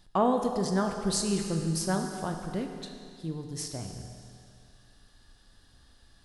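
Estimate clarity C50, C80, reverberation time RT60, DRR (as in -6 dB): 5.5 dB, 6.5 dB, 2.3 s, 4.0 dB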